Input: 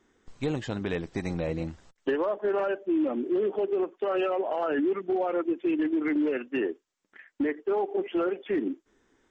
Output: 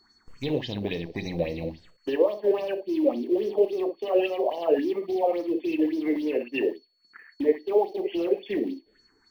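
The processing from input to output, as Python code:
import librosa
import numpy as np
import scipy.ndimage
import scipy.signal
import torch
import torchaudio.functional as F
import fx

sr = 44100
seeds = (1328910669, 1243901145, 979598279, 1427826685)

p1 = fx.quant_float(x, sr, bits=2)
p2 = x + (p1 * librosa.db_to_amplitude(-9.0))
p3 = fx.env_phaser(p2, sr, low_hz=500.0, high_hz=1400.0, full_db=-30.0)
p4 = p3 + 10.0 ** (-56.0 / 20.0) * np.sin(2.0 * np.pi * 4400.0 * np.arange(len(p3)) / sr)
p5 = fx.room_early_taps(p4, sr, ms=(29, 59), db=(-11.0, -8.5))
p6 = fx.bell_lfo(p5, sr, hz=3.6, low_hz=460.0, high_hz=6000.0, db=15)
y = p6 * librosa.db_to_amplitude(-4.0)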